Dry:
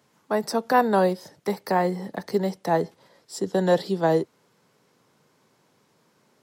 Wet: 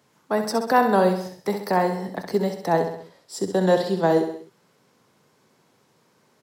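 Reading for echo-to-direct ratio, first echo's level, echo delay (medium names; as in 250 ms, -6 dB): -6.5 dB, -8.0 dB, 65 ms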